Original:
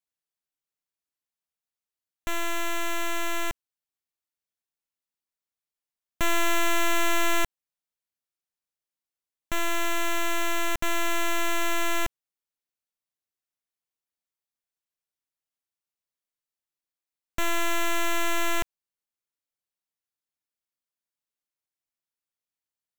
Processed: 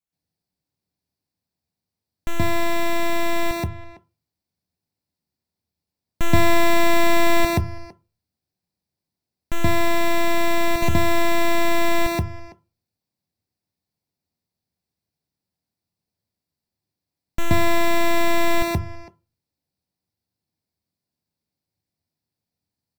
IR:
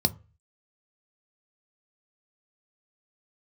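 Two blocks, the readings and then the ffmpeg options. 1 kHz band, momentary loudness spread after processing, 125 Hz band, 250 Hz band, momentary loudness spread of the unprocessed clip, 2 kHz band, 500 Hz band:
+6.0 dB, 14 LU, +18.5 dB, +10.5 dB, 9 LU, +4.0 dB, +10.0 dB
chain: -filter_complex "[0:a]lowshelf=f=350:g=10.5,asplit=2[a][b];[b]adelay=330,highpass=300,lowpass=3.4k,asoftclip=type=hard:threshold=-19.5dB,volume=-17dB[c];[a][c]amix=inputs=2:normalize=0,asplit=2[d][e];[1:a]atrim=start_sample=2205,adelay=126[f];[e][f]afir=irnorm=-1:irlink=0,volume=-3.5dB[g];[d][g]amix=inputs=2:normalize=0,volume=-2.5dB"

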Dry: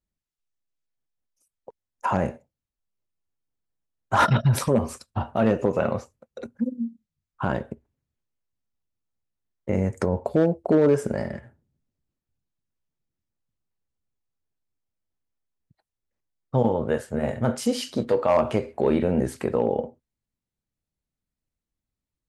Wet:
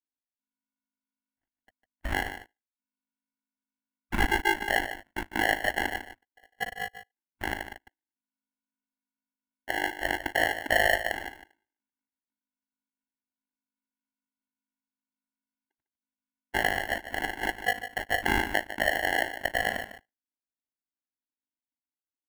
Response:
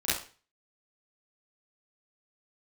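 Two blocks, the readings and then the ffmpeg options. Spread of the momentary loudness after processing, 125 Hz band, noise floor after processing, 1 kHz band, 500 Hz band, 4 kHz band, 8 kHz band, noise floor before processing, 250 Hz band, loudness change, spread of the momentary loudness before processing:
12 LU, -16.5 dB, under -85 dBFS, -2.5 dB, -11.0 dB, +5.5 dB, -2.0 dB, under -85 dBFS, -13.5 dB, -4.5 dB, 13 LU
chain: -filter_complex "[0:a]afftfilt=real='real(if(lt(b,272),68*(eq(floor(b/68),0)*1+eq(floor(b/68),1)*0+eq(floor(b/68),2)*3+eq(floor(b/68),3)*2)+mod(b,68),b),0)':imag='imag(if(lt(b,272),68*(eq(floor(b/68),0)*1+eq(floor(b/68),1)*0+eq(floor(b/68),2)*3+eq(floor(b/68),3)*2)+mod(b,68),b),0)':win_size=2048:overlap=0.75,afwtdn=0.0398,acrusher=samples=36:mix=1:aa=0.000001,firequalizer=gain_entry='entry(180,0);entry(270,2);entry(430,-17);entry(670,-2);entry(1800,6);entry(4500,-10);entry(11000,-5)':delay=0.05:min_phase=1,aeval=exprs='val(0)*sin(2*PI*26*n/s)':c=same,equalizer=f=150:w=1.8:g=-13.5,asplit=2[a][b];[b]aecho=0:1:151:0.266[c];[a][c]amix=inputs=2:normalize=0"

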